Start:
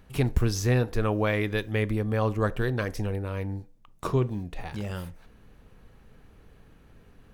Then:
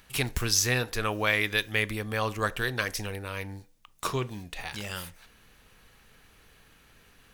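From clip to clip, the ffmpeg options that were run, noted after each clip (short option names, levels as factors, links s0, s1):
-af "tiltshelf=f=1100:g=-9.5,volume=1.19"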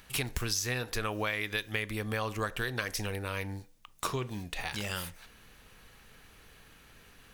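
-af "acompressor=threshold=0.0282:ratio=5,volume=1.19"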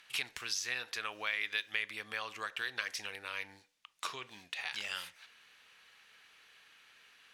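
-af "bandpass=f=2800:t=q:w=0.8:csg=0"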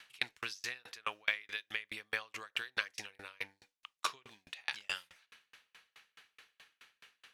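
-af "aeval=exprs='val(0)*pow(10,-38*if(lt(mod(4.7*n/s,1),2*abs(4.7)/1000),1-mod(4.7*n/s,1)/(2*abs(4.7)/1000),(mod(4.7*n/s,1)-2*abs(4.7)/1000)/(1-2*abs(4.7)/1000))/20)':c=same,volume=2.37"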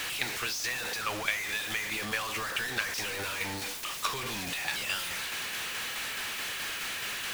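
-af "aeval=exprs='val(0)+0.5*0.0335*sgn(val(0))':c=same"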